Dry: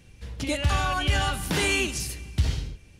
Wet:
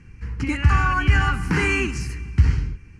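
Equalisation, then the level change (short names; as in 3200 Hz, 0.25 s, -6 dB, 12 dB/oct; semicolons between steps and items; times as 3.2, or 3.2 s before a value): LPF 4000 Hz 12 dB/oct; fixed phaser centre 1500 Hz, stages 4; +8.0 dB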